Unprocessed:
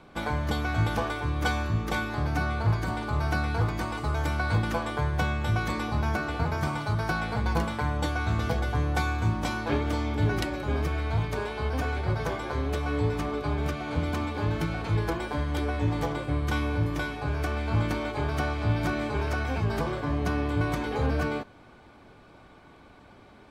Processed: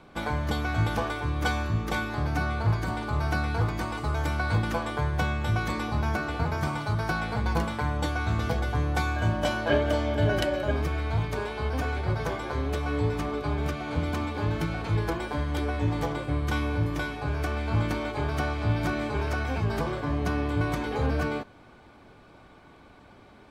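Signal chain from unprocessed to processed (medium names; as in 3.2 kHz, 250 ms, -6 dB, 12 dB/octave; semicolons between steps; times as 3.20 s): 9.16–10.71 s: small resonant body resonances 610/1600/3000 Hz, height 17 dB, ringing for 65 ms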